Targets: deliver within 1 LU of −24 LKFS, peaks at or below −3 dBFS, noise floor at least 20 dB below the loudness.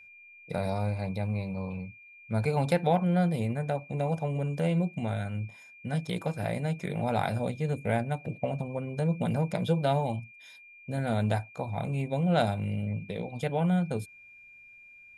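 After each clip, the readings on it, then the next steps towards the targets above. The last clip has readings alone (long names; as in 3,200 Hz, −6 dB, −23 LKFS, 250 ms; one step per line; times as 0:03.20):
interfering tone 2,400 Hz; level of the tone −50 dBFS; integrated loudness −30.5 LKFS; sample peak −12.0 dBFS; target loudness −24.0 LKFS
→ notch filter 2,400 Hz, Q 30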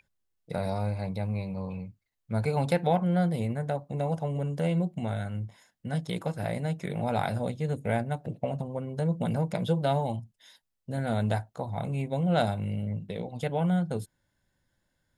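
interfering tone none found; integrated loudness −30.5 LKFS; sample peak −12.0 dBFS; target loudness −24.0 LKFS
→ level +6.5 dB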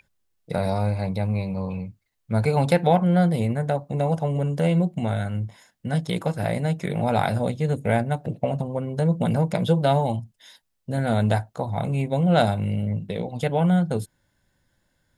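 integrated loudness −24.0 LKFS; sample peak −5.5 dBFS; background noise floor −72 dBFS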